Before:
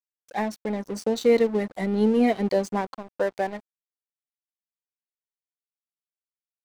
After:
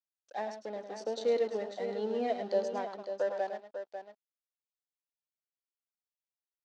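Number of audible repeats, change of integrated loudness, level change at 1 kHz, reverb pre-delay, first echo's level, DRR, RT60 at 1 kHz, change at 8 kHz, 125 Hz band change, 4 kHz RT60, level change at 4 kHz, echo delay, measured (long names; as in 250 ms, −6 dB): 2, −10.0 dB, −7.5 dB, no reverb audible, −8.5 dB, no reverb audible, no reverb audible, below −10 dB, below −15 dB, no reverb audible, −8.0 dB, 106 ms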